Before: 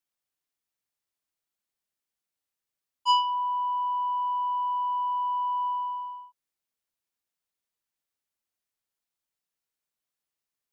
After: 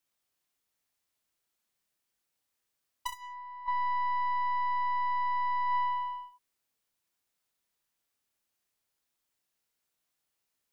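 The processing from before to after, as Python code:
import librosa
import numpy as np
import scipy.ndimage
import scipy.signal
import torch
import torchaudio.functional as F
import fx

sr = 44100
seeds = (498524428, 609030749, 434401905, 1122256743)

y = fx.tracing_dist(x, sr, depth_ms=0.38)
y = fx.peak_eq(y, sr, hz=1200.0, db=7.5, octaves=2.2, at=(3.12, 3.67))
y = fx.over_compress(y, sr, threshold_db=-29.0, ratio=-0.5)
y = fx.room_early_taps(y, sr, ms=(29, 64), db=(-5.5, -8.5))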